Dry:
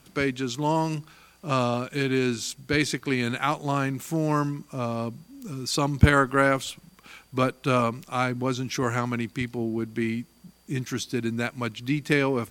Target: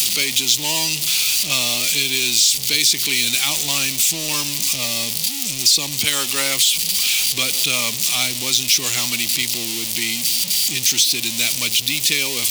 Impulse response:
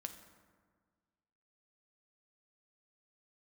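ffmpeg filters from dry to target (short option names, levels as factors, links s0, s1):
-filter_complex "[0:a]aeval=exprs='val(0)+0.5*0.0447*sgn(val(0))':c=same,aexciter=amount=10.4:drive=9.4:freq=2400,acrossover=split=110|570|5200[s0][s1][s2][s3];[s0]acompressor=threshold=0.00562:ratio=4[s4];[s1]acompressor=threshold=0.0562:ratio=4[s5];[s2]acompressor=threshold=0.282:ratio=4[s6];[s3]acompressor=threshold=0.224:ratio=4[s7];[s4][s5][s6][s7]amix=inputs=4:normalize=0,volume=0.501"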